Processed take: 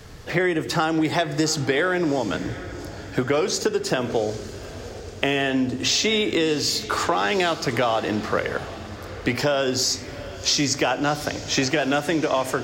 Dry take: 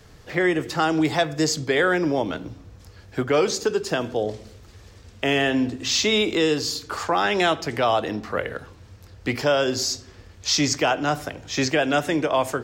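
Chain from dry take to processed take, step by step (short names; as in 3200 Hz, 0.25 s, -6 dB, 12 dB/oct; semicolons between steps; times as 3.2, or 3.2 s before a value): compressor, threshold -25 dBFS, peak gain reduction 9.5 dB; diffused feedback echo 0.753 s, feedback 51%, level -15 dB; gain +6.5 dB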